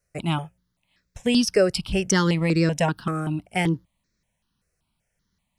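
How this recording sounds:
notches that jump at a steady rate 5.2 Hz 920–3,000 Hz

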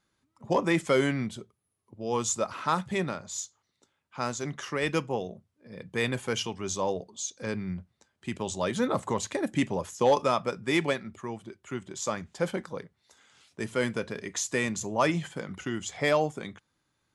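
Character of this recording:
background noise floor −78 dBFS
spectral slope −4.0 dB per octave

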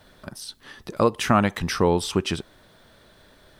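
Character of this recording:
background noise floor −55 dBFS
spectral slope −5.0 dB per octave

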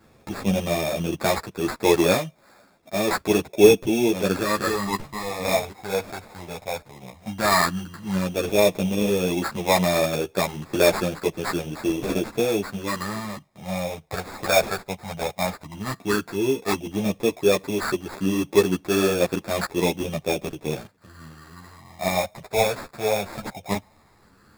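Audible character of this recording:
phaser sweep stages 6, 0.12 Hz, lowest notch 310–3,300 Hz
aliases and images of a low sample rate 3,000 Hz, jitter 0%
a shimmering, thickened sound

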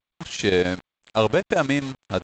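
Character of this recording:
a quantiser's noise floor 6 bits, dither none
chopped level 7.7 Hz, depth 60%, duty 80%
G.722

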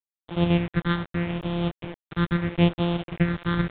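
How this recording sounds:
a buzz of ramps at a fixed pitch in blocks of 256 samples
phaser sweep stages 6, 0.79 Hz, lowest notch 670–1,800 Hz
a quantiser's noise floor 6 bits, dither none
mu-law

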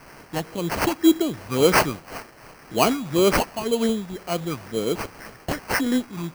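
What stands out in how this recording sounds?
a quantiser's noise floor 8 bits, dither triangular
phaser sweep stages 6, 1.9 Hz, lowest notch 420–3,300 Hz
aliases and images of a low sample rate 3,600 Hz, jitter 0%
amplitude modulation by smooth noise

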